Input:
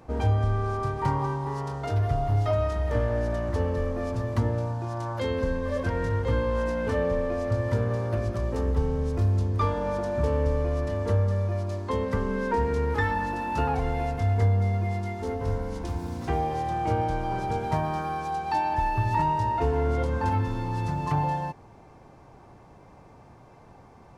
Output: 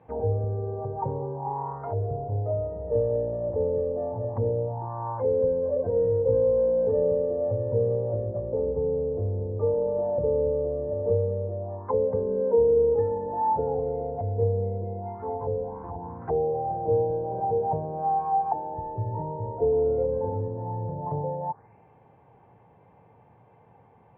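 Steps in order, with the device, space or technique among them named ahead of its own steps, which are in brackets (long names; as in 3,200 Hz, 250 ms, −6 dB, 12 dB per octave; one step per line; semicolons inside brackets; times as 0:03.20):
envelope filter bass rig (envelope-controlled low-pass 510–3,700 Hz down, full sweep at −24 dBFS; loudspeaker in its box 77–2,200 Hz, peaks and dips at 110 Hz +7 dB, 170 Hz +5 dB, 320 Hz −3 dB, 470 Hz +8 dB, 850 Hz +7 dB, 1,300 Hz −5 dB)
level −9 dB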